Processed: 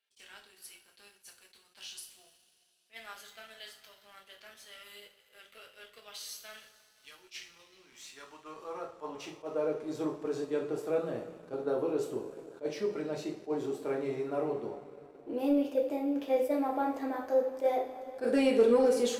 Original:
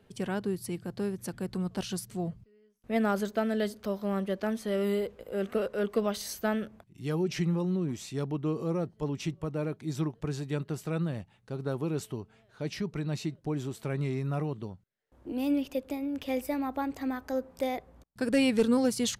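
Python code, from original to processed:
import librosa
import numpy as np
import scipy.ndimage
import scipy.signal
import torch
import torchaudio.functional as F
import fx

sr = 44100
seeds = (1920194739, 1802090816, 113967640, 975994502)

y = fx.filter_sweep_highpass(x, sr, from_hz=2800.0, to_hz=460.0, start_s=7.51, end_s=9.78, q=1.3)
y = fx.rev_double_slope(y, sr, seeds[0], early_s=0.43, late_s=4.4, knee_db=-18, drr_db=-1.5)
y = fx.leveller(y, sr, passes=1)
y = fx.tilt_shelf(y, sr, db=6.0, hz=970.0)
y = fx.attack_slew(y, sr, db_per_s=370.0)
y = y * librosa.db_to_amplitude(-7.5)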